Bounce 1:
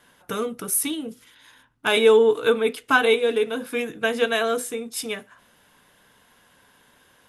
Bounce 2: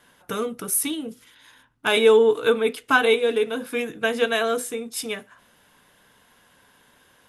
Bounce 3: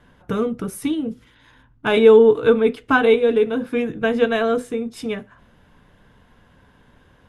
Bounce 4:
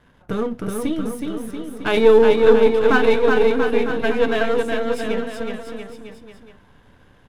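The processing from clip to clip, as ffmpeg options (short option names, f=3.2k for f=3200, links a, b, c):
-af anull
-af "aemphasis=mode=reproduction:type=riaa,volume=1.5dB"
-af "aeval=exprs='if(lt(val(0),0),0.447*val(0),val(0))':c=same,aecho=1:1:370|684.5|951.8|1179|1372:0.631|0.398|0.251|0.158|0.1,volume=1dB"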